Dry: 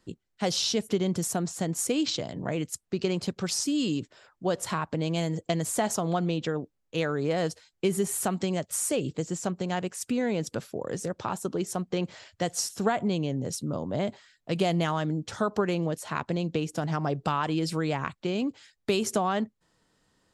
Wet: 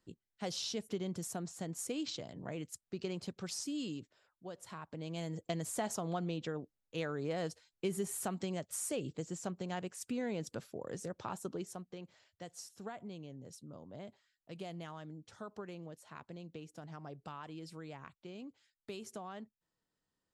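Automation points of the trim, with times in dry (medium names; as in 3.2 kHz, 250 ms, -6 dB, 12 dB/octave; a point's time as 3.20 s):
3.78 s -12 dB
4.55 s -20 dB
5.40 s -10 dB
11.52 s -10 dB
11.98 s -19.5 dB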